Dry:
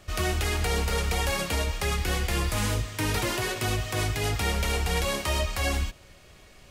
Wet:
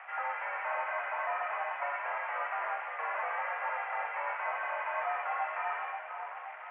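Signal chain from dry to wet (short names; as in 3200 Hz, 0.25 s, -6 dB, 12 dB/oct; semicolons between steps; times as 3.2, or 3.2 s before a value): delta modulation 16 kbps, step -39 dBFS; mistuned SSB +160 Hz 570–2100 Hz; split-band echo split 1400 Hz, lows 0.528 s, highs 0.106 s, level -6 dB; gain +1.5 dB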